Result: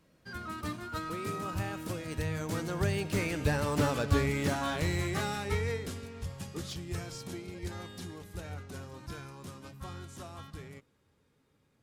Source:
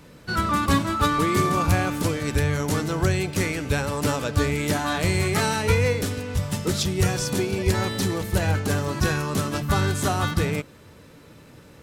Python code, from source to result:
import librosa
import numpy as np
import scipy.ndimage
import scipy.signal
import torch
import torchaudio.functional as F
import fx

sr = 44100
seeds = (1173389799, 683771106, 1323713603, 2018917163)

y = fx.doppler_pass(x, sr, speed_mps=26, closest_m=20.0, pass_at_s=3.81)
y = fx.slew_limit(y, sr, full_power_hz=110.0)
y = F.gain(torch.from_numpy(y), -4.0).numpy()